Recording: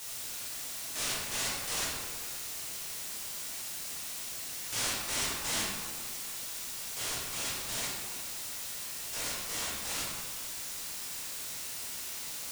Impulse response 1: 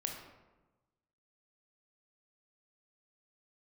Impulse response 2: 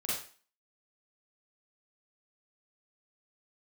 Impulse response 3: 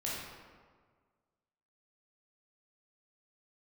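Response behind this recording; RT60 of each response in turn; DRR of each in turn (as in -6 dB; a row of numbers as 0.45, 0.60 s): 3; 1.2, 0.40, 1.6 s; 1.5, -8.0, -6.5 dB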